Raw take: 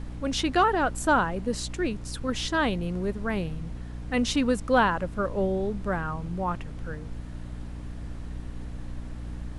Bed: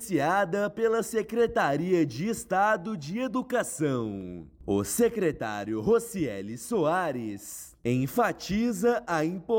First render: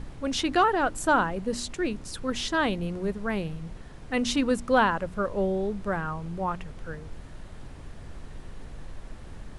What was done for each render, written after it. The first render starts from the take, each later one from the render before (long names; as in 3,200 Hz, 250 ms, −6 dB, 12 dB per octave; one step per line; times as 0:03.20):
hum removal 60 Hz, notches 5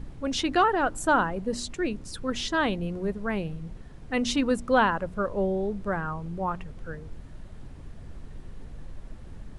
broadband denoise 6 dB, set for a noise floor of −44 dBFS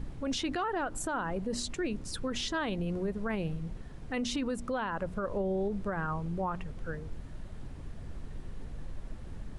downward compressor, threshold −25 dBFS, peak gain reduction 9 dB
brickwall limiter −25 dBFS, peak gain reduction 8.5 dB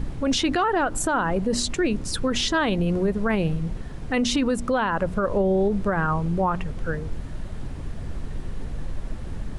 level +10.5 dB